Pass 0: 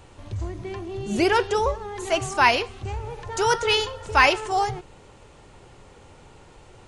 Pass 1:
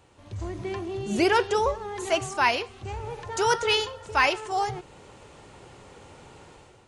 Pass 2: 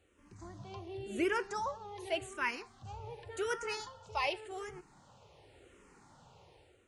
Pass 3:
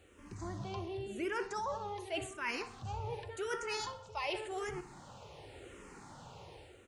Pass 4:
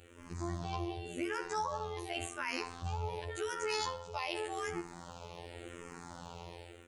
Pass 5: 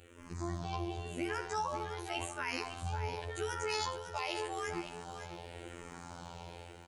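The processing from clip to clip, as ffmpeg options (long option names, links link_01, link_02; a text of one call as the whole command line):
ffmpeg -i in.wav -af "highpass=frequency=97:poles=1,dynaudnorm=framelen=150:gausssize=5:maxgain=10dB,volume=-8dB" out.wav
ffmpeg -i in.wav -filter_complex "[0:a]asplit=2[link_01][link_02];[link_02]afreqshift=-0.89[link_03];[link_01][link_03]amix=inputs=2:normalize=1,volume=-9dB" out.wav
ffmpeg -i in.wav -filter_complex "[0:a]areverse,acompressor=threshold=-45dB:ratio=4,areverse,asplit=2[link_01][link_02];[link_02]adelay=61,lowpass=frequency=3900:poles=1,volume=-14dB,asplit=2[link_03][link_04];[link_04]adelay=61,lowpass=frequency=3900:poles=1,volume=0.51,asplit=2[link_05][link_06];[link_06]adelay=61,lowpass=frequency=3900:poles=1,volume=0.51,asplit=2[link_07][link_08];[link_08]adelay=61,lowpass=frequency=3900:poles=1,volume=0.51,asplit=2[link_09][link_10];[link_10]adelay=61,lowpass=frequency=3900:poles=1,volume=0.51[link_11];[link_01][link_03][link_05][link_07][link_09][link_11]amix=inputs=6:normalize=0,volume=8dB" out.wav
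ffmpeg -i in.wav -filter_complex "[0:a]acrossover=split=4400[link_01][link_02];[link_01]alimiter=level_in=9.5dB:limit=-24dB:level=0:latency=1:release=63,volume=-9.5dB[link_03];[link_03][link_02]amix=inputs=2:normalize=0,afftfilt=real='hypot(re,im)*cos(PI*b)':imag='0':win_size=2048:overlap=0.75,volume=7.5dB" out.wav
ffmpeg -i in.wav -af "aecho=1:1:556:0.316" out.wav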